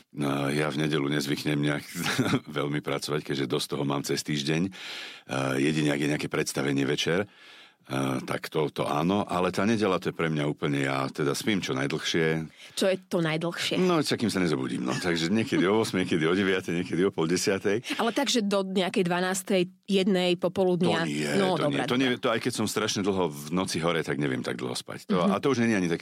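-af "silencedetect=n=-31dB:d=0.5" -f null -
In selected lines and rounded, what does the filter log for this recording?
silence_start: 7.24
silence_end: 7.90 | silence_duration: 0.66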